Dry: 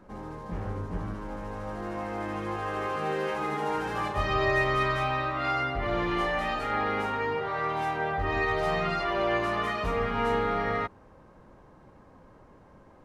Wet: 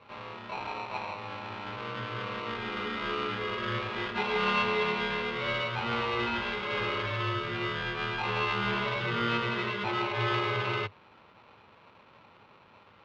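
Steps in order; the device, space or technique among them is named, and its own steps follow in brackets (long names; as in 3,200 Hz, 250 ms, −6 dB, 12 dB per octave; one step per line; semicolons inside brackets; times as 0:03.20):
ring modulator pedal into a guitar cabinet (ring modulator with a square carrier 820 Hz; loudspeaker in its box 80–3,500 Hz, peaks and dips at 100 Hz +8 dB, 280 Hz −8 dB, 710 Hz −9 dB, 1,800 Hz −7 dB)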